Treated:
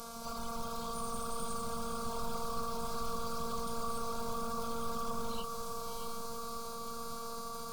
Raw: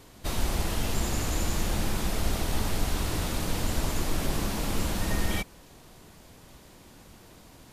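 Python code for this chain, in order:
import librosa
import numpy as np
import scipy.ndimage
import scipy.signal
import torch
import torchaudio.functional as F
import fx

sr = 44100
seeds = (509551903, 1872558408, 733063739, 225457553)

p1 = fx.rattle_buzz(x, sr, strikes_db=-27.0, level_db=-29.0)
p2 = scipy.signal.sosfilt(scipy.signal.butter(4, 63.0, 'highpass', fs=sr, output='sos'), p1)
p3 = fx.high_shelf(p2, sr, hz=10000.0, db=-7.0)
p4 = fx.over_compress(p3, sr, threshold_db=-42.0, ratio=-0.5)
p5 = p3 + (p4 * 10.0 ** (1.0 / 20.0))
p6 = fx.robotise(p5, sr, hz=231.0)
p7 = np.clip(p6, -10.0 ** (-23.5 / 20.0), 10.0 ** (-23.5 / 20.0))
p8 = fx.fixed_phaser(p7, sr, hz=770.0, stages=4)
p9 = fx.echo_diffused(p8, sr, ms=572, feedback_pct=49, wet_db=-6.5)
p10 = fx.formant_shift(p9, sr, semitones=4)
y = p10 * 10.0 ** (-1.0 / 20.0)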